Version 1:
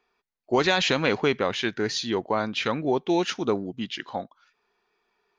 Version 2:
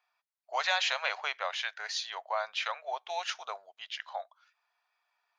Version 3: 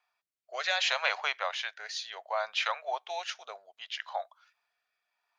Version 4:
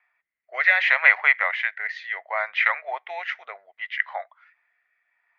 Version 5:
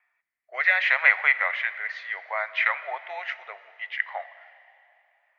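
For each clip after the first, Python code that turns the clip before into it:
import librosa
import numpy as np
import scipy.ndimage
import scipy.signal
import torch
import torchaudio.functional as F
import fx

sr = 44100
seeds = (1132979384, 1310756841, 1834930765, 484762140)

y1 = scipy.signal.sosfilt(scipy.signal.ellip(4, 1.0, 50, 630.0, 'highpass', fs=sr, output='sos'), x)
y1 = y1 * 10.0 ** (-4.5 / 20.0)
y2 = fx.rotary(y1, sr, hz=0.65)
y2 = y2 * 10.0 ** (3.5 / 20.0)
y3 = fx.lowpass_res(y2, sr, hz=2000.0, q=11.0)
y3 = y3 * 10.0 ** (1.5 / 20.0)
y4 = fx.rev_plate(y3, sr, seeds[0], rt60_s=2.7, hf_ratio=1.0, predelay_ms=0, drr_db=14.0)
y4 = y4 * 10.0 ** (-2.5 / 20.0)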